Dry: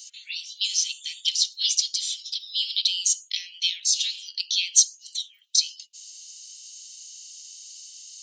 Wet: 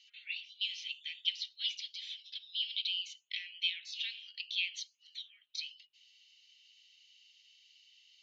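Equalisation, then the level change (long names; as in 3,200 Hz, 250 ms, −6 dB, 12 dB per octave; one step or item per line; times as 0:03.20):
low-pass filter 2,600 Hz 24 dB per octave
0.0 dB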